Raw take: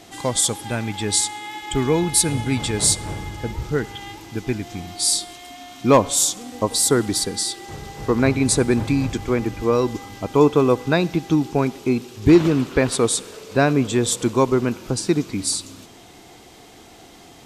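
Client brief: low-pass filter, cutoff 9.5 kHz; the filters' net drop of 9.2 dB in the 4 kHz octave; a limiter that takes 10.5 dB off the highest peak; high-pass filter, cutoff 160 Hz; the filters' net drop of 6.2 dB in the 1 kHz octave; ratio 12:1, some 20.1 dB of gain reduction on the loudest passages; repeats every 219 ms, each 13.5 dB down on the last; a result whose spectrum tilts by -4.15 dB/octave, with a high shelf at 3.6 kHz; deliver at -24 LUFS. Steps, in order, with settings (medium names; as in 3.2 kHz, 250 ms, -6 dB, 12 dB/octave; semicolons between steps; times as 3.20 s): high-pass 160 Hz; low-pass 9.5 kHz; peaking EQ 1 kHz -7 dB; treble shelf 3.6 kHz -6 dB; peaking EQ 4 kHz -6.5 dB; compression 12:1, threshold -30 dBFS; peak limiter -27 dBFS; feedback delay 219 ms, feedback 21%, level -13.5 dB; trim +13.5 dB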